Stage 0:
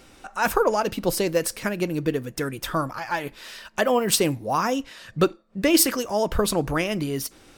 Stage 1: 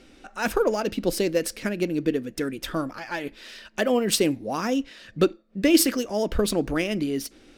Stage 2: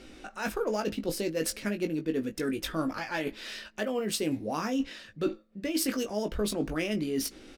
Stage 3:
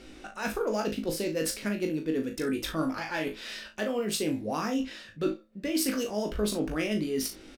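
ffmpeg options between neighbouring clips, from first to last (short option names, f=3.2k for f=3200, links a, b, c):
-af "adynamicsmooth=sensitivity=4.5:basefreq=6.6k,equalizer=f=125:t=o:w=1:g=-9,equalizer=f=250:t=o:w=1:g=5,equalizer=f=1k:t=o:w=1:g=-9,equalizer=f=8k:t=o:w=1:g=-3,equalizer=f=16k:t=o:w=1:g=6"
-filter_complex "[0:a]areverse,acompressor=threshold=-30dB:ratio=6,areverse,asplit=2[a][b];[b]adelay=19,volume=-6.5dB[c];[a][c]amix=inputs=2:normalize=0,volume=1.5dB"
-af "aecho=1:1:38|69:0.447|0.141"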